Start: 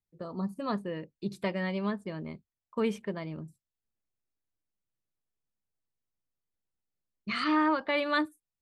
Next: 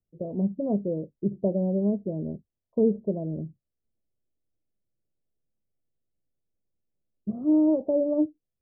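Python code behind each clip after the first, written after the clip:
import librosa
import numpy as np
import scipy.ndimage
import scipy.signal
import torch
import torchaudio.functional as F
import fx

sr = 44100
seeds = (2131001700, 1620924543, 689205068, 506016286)

y = scipy.signal.sosfilt(scipy.signal.butter(8, 670.0, 'lowpass', fs=sr, output='sos'), x)
y = y * 10.0 ** (7.5 / 20.0)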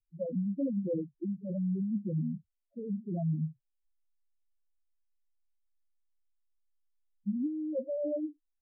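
y = fx.over_compress(x, sr, threshold_db=-29.0, ratio=-1.0)
y = fx.wow_flutter(y, sr, seeds[0], rate_hz=2.1, depth_cents=24.0)
y = fx.spec_topn(y, sr, count=2)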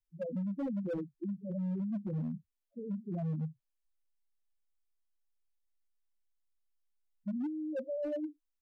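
y = np.clip(x, -10.0 ** (-29.0 / 20.0), 10.0 ** (-29.0 / 20.0))
y = y * 10.0 ** (-2.5 / 20.0)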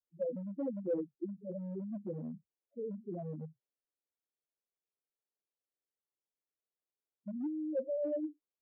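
y = fx.bandpass_q(x, sr, hz=440.0, q=2.0)
y = y * 10.0 ** (5.0 / 20.0)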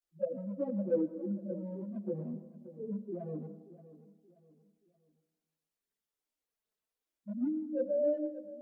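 y = fx.chorus_voices(x, sr, voices=6, hz=0.31, base_ms=17, depth_ms=3.3, mix_pct=70)
y = fx.echo_feedback(y, sr, ms=578, feedback_pct=37, wet_db=-16.0)
y = fx.rev_freeverb(y, sr, rt60_s=1.2, hf_ratio=0.4, predelay_ms=50, drr_db=12.5)
y = y * 10.0 ** (5.5 / 20.0)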